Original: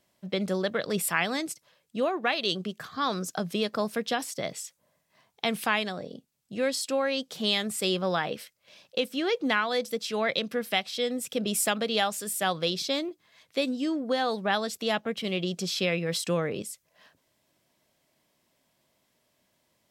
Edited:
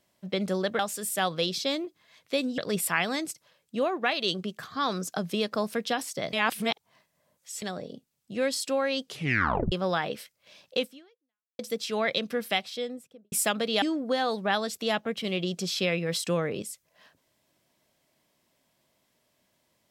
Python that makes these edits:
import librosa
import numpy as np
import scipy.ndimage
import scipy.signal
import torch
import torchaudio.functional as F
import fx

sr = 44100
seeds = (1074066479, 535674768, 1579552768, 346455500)

y = fx.studio_fade_out(x, sr, start_s=10.71, length_s=0.82)
y = fx.edit(y, sr, fx.reverse_span(start_s=4.54, length_s=1.29),
    fx.tape_stop(start_s=7.26, length_s=0.67),
    fx.fade_out_span(start_s=9.04, length_s=0.76, curve='exp'),
    fx.move(start_s=12.03, length_s=1.79, to_s=0.79), tone=tone)